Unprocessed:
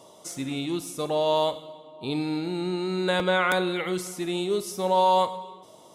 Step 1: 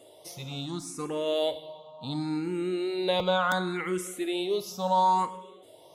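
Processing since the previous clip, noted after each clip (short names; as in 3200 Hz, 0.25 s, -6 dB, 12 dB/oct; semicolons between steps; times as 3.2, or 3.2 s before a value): endless phaser +0.71 Hz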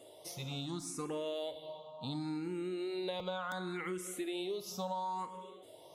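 compressor 10:1, threshold -33 dBFS, peak gain reduction 13.5 dB; gain -2.5 dB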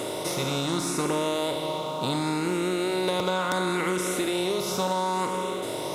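per-bin compression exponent 0.4; gain +8 dB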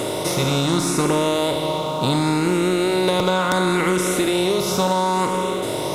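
low shelf 120 Hz +9 dB; gain +6.5 dB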